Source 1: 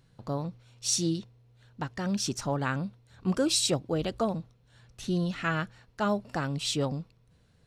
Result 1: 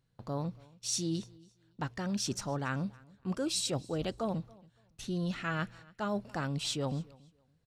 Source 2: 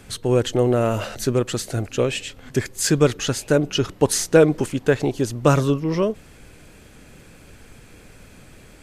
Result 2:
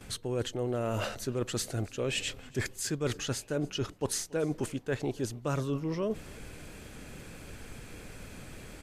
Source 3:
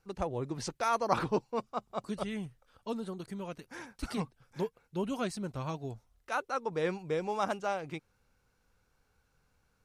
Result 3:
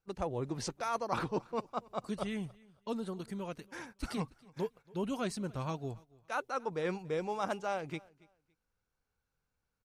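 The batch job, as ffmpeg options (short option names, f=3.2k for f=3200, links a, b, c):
-af "agate=range=-13dB:threshold=-51dB:ratio=16:detection=peak,areverse,acompressor=threshold=-30dB:ratio=6,areverse,aecho=1:1:281|562:0.0631|0.0139"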